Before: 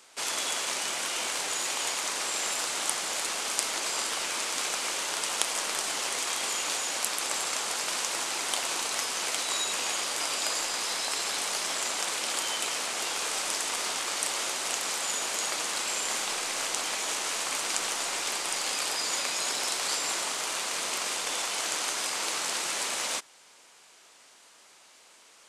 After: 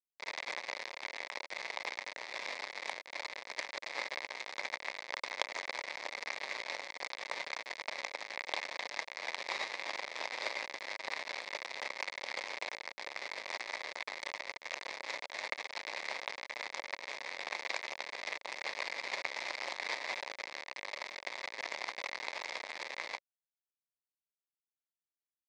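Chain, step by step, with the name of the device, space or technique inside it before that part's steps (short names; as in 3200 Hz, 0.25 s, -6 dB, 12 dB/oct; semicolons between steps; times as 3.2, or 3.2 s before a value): hand-held game console (bit-crush 4-bit; speaker cabinet 470–4300 Hz, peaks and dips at 560 Hz +6 dB, 940 Hz +3 dB, 1400 Hz -9 dB, 2100 Hz +10 dB, 3000 Hz -10 dB); gain -1 dB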